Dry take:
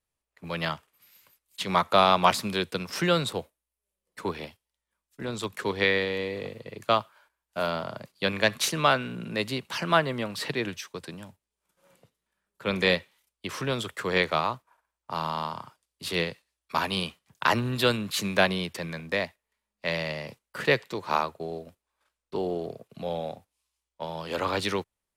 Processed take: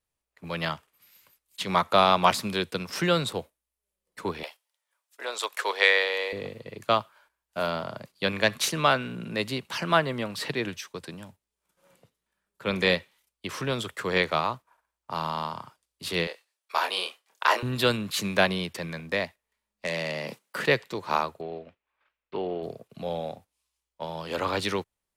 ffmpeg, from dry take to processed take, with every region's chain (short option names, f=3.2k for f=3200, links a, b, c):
-filter_complex "[0:a]asettb=1/sr,asplit=3[a][b][c];[a]atrim=end=4.434[d];[b]atrim=start=4.43:end=6.33,asetpts=PTS-STARTPTS,afade=t=in:d=0.004:c=qsin,afade=t=out:st=1.896:d=0.004:c=qsin,highpass=f=540:w=0.5412,highpass=f=540:w=1.3066,acontrast=30[e];[c]atrim=start=6.326[f];[d][e]acrossfade=d=0.004:c1=hsin:c2=qsin[g];[g][f]acrossfade=d=0.004:c1=qsin:c2=hsin,asettb=1/sr,asplit=3[h][i][j];[h]atrim=end=16.274[k];[i]atrim=start=16.27:end=17.63,asetpts=PTS-STARTPTS,afade=t=in:d=0.004:c=qsin,afade=t=out:st=1.356:d=0.004:c=qsin,highpass=f=420:w=0.5412,highpass=f=420:w=1.3066,asplit=2[l][m];[m]adelay=27,volume=-5dB[n];[l][n]amix=inputs=2:normalize=0,atrim=end_sample=59976[o];[j]atrim=start=17.626[p];[k][o]acrossfade=d=0.004:c1=hsin:c2=qsin[q];[q][p]acrossfade=d=0.004:c1=qsin:c2=hsin,asettb=1/sr,asplit=3[r][s][t];[r]atrim=end=19.854[u];[s]atrim=start=19.85:end=20.66,asetpts=PTS-STARTPTS,afade=t=in:d=0.004:c=qsin,afade=t=out:st=0.806:d=0.004:c=qsin,acompressor=threshold=-42dB:ratio=2:attack=3.2:release=140:knee=1:detection=peak,highpass=f=160:w=0.5412,highpass=f=160:w=1.3066,aeval=exprs='0.0944*sin(PI/2*2*val(0)/0.0944)':c=same[v];[t]atrim=start=20.656[w];[u][v]acrossfade=d=0.004:c1=hsin:c2=qsin[x];[x][w]acrossfade=d=0.004:c1=qsin:c2=hsin,asettb=1/sr,asplit=3[y][z][aa];[y]atrim=end=21.414[ab];[z]atrim=start=21.41:end=22.63,asetpts=PTS-STARTPTS,afade=t=in:d=0.004:c=qsin,afade=t=out:st=1.216:d=0.004:c=qsin,lowpass=f=2.5k:t=q:w=1.9,lowshelf=f=250:g=-6.5[ac];[aa]atrim=start=22.626[ad];[ab][ac]acrossfade=d=0.004:c1=hsin:c2=qsin[ae];[ae][ad]acrossfade=d=0.004:c1=qsin:c2=hsin"